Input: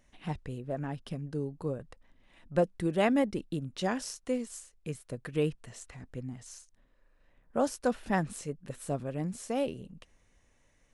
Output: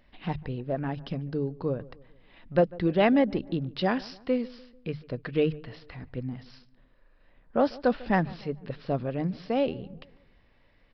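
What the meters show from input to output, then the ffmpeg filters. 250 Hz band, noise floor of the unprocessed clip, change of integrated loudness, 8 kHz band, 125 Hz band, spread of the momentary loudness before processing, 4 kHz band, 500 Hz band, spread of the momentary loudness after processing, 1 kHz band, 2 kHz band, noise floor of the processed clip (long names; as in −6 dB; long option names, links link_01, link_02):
+5.0 dB, −68 dBFS, +4.5 dB, below −20 dB, +4.0 dB, 14 LU, +4.0 dB, +5.0 dB, 15 LU, +4.5 dB, +4.5 dB, −62 dBFS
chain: -filter_complex "[0:a]aeval=exprs='0.224*(cos(1*acos(clip(val(0)/0.224,-1,1)))-cos(1*PI/2))+0.00794*(cos(5*acos(clip(val(0)/0.224,-1,1)))-cos(5*PI/2))':channel_layout=same,aresample=11025,aresample=44100,bandreject=frequency=50:width_type=h:width=6,bandreject=frequency=100:width_type=h:width=6,bandreject=frequency=150:width_type=h:width=6,asplit=2[link_01][link_02];[link_02]adelay=147,lowpass=frequency=1500:poles=1,volume=-20.5dB,asplit=2[link_03][link_04];[link_04]adelay=147,lowpass=frequency=1500:poles=1,volume=0.49,asplit=2[link_05][link_06];[link_06]adelay=147,lowpass=frequency=1500:poles=1,volume=0.49,asplit=2[link_07][link_08];[link_08]adelay=147,lowpass=frequency=1500:poles=1,volume=0.49[link_09];[link_03][link_05][link_07][link_09]amix=inputs=4:normalize=0[link_10];[link_01][link_10]amix=inputs=2:normalize=0,volume=4dB"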